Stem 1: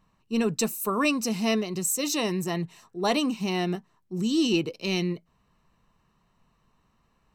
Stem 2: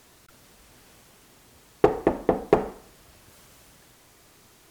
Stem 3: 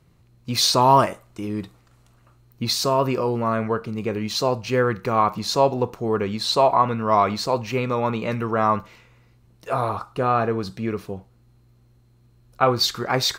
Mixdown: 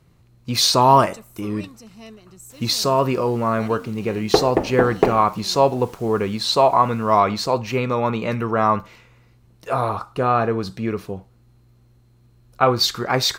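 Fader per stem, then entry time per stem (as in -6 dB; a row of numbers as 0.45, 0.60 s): -16.5, +2.5, +2.0 dB; 0.55, 2.50, 0.00 s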